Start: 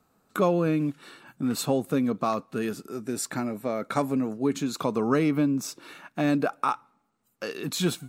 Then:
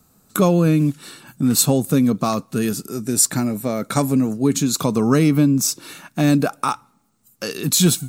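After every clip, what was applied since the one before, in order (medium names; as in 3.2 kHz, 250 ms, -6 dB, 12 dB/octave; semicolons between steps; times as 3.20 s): tone controls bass +10 dB, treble +14 dB; trim +4 dB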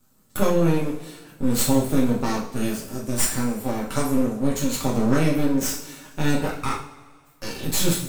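half-wave rectifier; two-slope reverb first 0.43 s, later 1.8 s, from -18 dB, DRR -4.5 dB; trim -7 dB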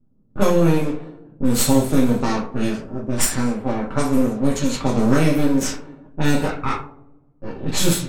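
level-controlled noise filter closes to 330 Hz, open at -16 dBFS; trim +3.5 dB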